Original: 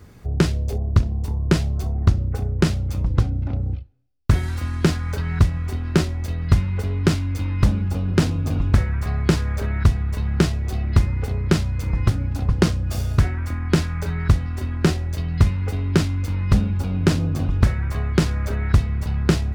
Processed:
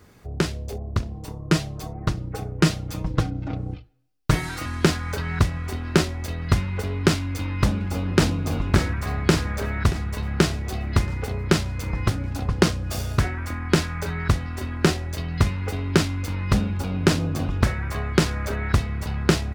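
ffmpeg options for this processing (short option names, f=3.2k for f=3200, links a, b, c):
-filter_complex "[0:a]asettb=1/sr,asplit=3[a][b][c];[a]atrim=end=1.144[d];[b]atrim=start=1.14:end=4.66,asetpts=PTS-STARTPTS,afade=t=in:d=0.004:c=qsin,afade=t=out:st=3.516:d=0.004:c=qsin,aecho=1:1:6.4:0.76,atrim=end_sample=155232[e];[c]atrim=start=4.656[f];[d][e]acrossfade=d=0.004:c1=hsin:c2=qsin[g];[g][f]acrossfade=d=0.004:c1=qsin:c2=hsin,asplit=2[h][i];[i]afade=t=in:st=7.22:d=0.01,afade=t=out:st=8.35:d=0.01,aecho=0:1:580|1160|1740|2320|2900|3480|4060|4640:0.446684|0.26801|0.160806|0.0964837|0.0578902|0.0347341|0.0208405|0.0125043[j];[h][j]amix=inputs=2:normalize=0,lowshelf=f=200:g=-9.5,dynaudnorm=f=470:g=11:m=11.5dB,volume=-1dB"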